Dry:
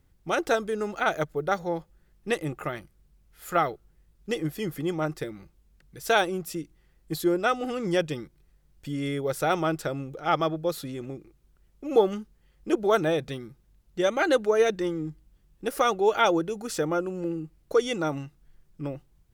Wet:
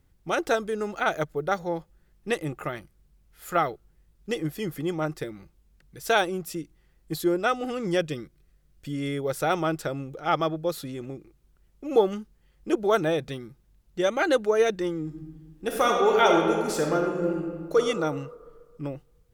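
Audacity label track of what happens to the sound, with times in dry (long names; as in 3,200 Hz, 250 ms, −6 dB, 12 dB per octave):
7.970000	9.010000	notch filter 880 Hz, Q 5.1
15.050000	17.770000	thrown reverb, RT60 1.7 s, DRR 0.5 dB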